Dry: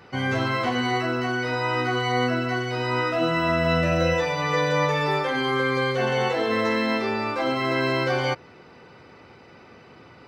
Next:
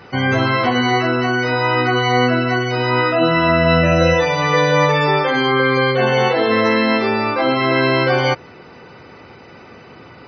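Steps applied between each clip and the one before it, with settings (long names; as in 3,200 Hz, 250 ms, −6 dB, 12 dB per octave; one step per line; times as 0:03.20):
gate on every frequency bin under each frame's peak −30 dB strong
level +8 dB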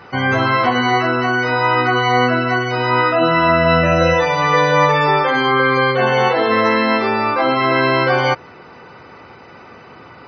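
parametric band 1,100 Hz +6 dB 1.5 octaves
level −2 dB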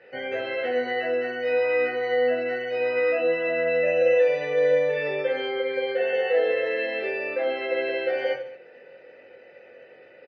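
brickwall limiter −7 dBFS, peak gain reduction 5.5 dB
formant filter e
reverse bouncing-ball delay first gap 20 ms, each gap 1.4×, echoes 5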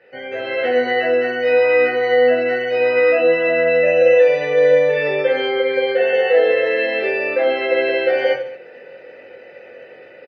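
automatic gain control gain up to 9 dB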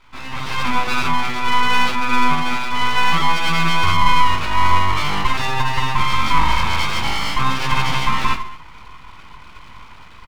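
full-wave rectification
level +2 dB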